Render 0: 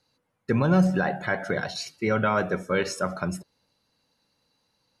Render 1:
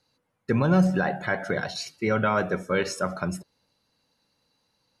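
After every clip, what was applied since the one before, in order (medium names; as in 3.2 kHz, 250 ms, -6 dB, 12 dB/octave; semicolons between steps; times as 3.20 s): no audible change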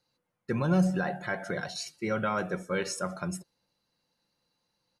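dynamic bell 8.7 kHz, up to +8 dB, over -55 dBFS, Q 0.96; comb 5.7 ms, depth 31%; trim -6.5 dB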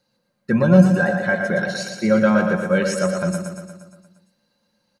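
small resonant body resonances 210/560/1600 Hz, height 12 dB, ringing for 65 ms; on a send: feedback delay 117 ms, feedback 60%, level -6 dB; on the sum: trim +5.5 dB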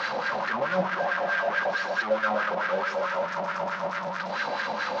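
one-bit delta coder 32 kbps, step -12 dBFS; wah-wah 4.6 Hz 700–1600 Hz, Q 3.1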